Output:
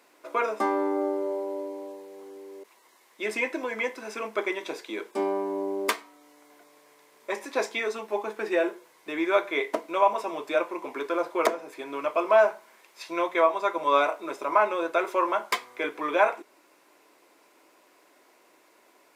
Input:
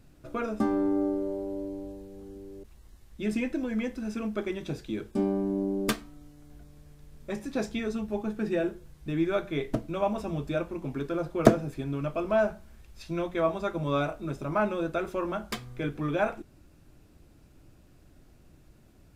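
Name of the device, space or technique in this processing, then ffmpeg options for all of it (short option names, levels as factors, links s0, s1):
laptop speaker: -af "highpass=f=390:w=0.5412,highpass=f=390:w=1.3066,equalizer=f=1000:t=o:w=0.27:g=11.5,equalizer=f=2100:t=o:w=0.31:g=8,alimiter=limit=0.178:level=0:latency=1:release=447,volume=1.88"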